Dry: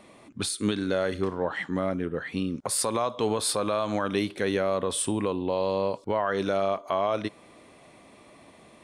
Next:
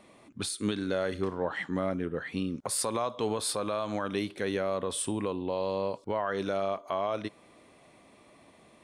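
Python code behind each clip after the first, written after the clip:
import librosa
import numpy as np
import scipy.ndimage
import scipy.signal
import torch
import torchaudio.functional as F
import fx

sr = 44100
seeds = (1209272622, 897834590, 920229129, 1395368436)

y = fx.rider(x, sr, range_db=10, speed_s=2.0)
y = F.gain(torch.from_numpy(y), -4.0).numpy()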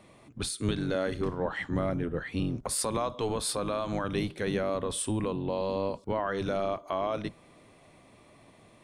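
y = fx.octave_divider(x, sr, octaves=1, level_db=-1.0)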